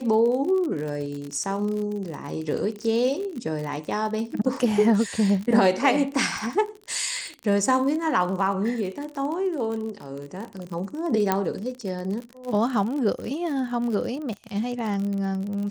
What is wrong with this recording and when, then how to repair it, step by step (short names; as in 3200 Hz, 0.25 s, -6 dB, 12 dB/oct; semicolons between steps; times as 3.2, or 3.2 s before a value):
crackle 46/s -30 dBFS
11.32 pop -7 dBFS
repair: de-click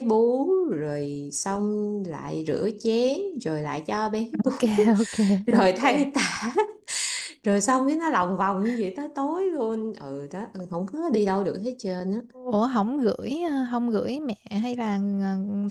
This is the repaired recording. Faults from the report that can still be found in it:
none